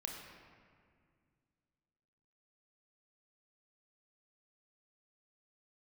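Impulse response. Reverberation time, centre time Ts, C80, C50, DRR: 2.1 s, 67 ms, 4.0 dB, 3.0 dB, 1.0 dB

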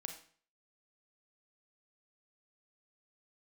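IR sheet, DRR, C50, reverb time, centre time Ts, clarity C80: 4.5 dB, 7.5 dB, 0.45 s, 18 ms, 11.5 dB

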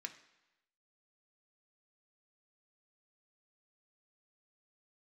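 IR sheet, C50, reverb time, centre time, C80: 12.5 dB, 1.0 s, 9 ms, 15.0 dB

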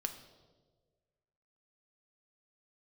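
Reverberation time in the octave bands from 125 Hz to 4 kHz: 1.8, 1.5, 1.8, 1.2, 0.85, 1.0 s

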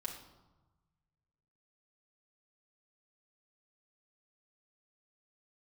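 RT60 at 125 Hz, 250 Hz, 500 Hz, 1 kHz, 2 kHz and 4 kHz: 2.2, 1.4, 1.1, 1.2, 0.75, 0.70 s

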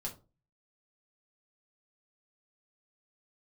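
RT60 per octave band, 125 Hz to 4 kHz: 0.55, 0.40, 0.35, 0.30, 0.20, 0.20 s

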